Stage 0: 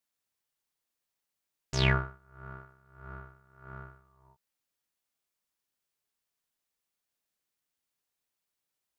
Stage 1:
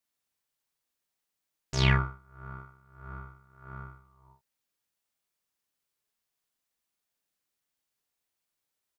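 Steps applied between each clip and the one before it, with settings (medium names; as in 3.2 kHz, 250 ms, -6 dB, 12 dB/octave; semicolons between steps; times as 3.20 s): doubling 45 ms -5.5 dB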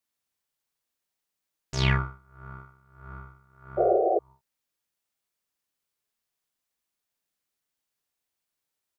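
painted sound noise, 3.77–4.19 s, 340–770 Hz -22 dBFS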